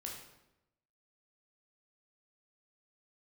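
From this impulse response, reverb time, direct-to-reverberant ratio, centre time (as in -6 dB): 0.90 s, -1.5 dB, 43 ms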